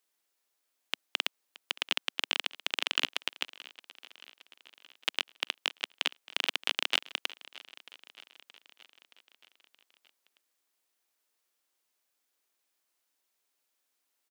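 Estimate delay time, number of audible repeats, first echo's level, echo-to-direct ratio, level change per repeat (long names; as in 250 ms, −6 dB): 623 ms, 4, −19.5 dB, −17.5 dB, −4.5 dB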